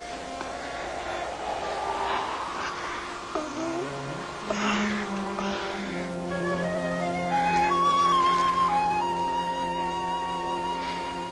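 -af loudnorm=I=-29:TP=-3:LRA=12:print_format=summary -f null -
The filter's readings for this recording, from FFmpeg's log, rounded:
Input Integrated:    -27.6 LUFS
Input True Peak:     -13.1 dBTP
Input LRA:             6.6 LU
Input Threshold:     -37.6 LUFS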